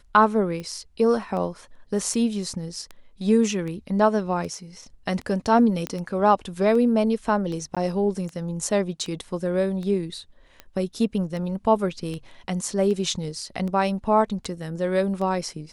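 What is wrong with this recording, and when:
scratch tick 78 rpm −22 dBFS
0:05.87: click −13 dBFS
0:07.75–0:07.77: drop-out 16 ms

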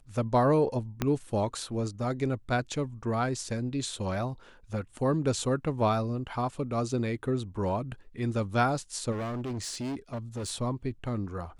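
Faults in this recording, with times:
0:01.02: click −13 dBFS
0:09.11–0:10.51: clipping −31 dBFS

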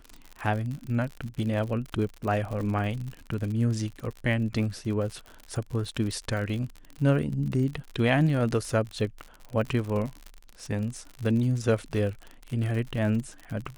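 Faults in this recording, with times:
surface crackle 65 per second −33 dBFS

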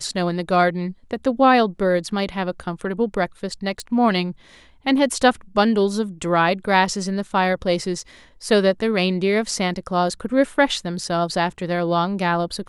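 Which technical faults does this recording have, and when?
0:03.80: click

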